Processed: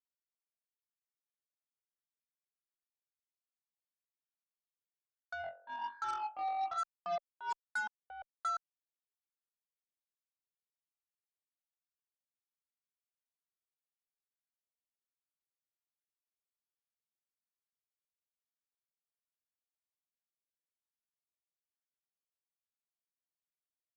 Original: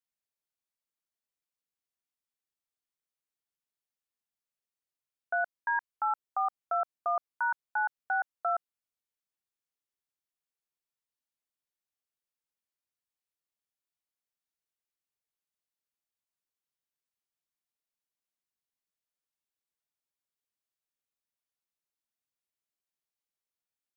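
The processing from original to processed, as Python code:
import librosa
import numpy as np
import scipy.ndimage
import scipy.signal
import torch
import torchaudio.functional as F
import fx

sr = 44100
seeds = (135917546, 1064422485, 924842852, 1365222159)

y = fx.room_flutter(x, sr, wall_m=3.8, rt60_s=0.9, at=(5.41, 6.77), fade=0.02)
y = fx.wah_lfo(y, sr, hz=1.2, low_hz=500.0, high_hz=1500.0, q=4.8)
y = fx.cheby_harmonics(y, sr, harmonics=(3, 5, 7), levels_db=(-27, -19, -18), full_scale_db=-26.0)
y = y * librosa.db_to_amplitude(-1.5)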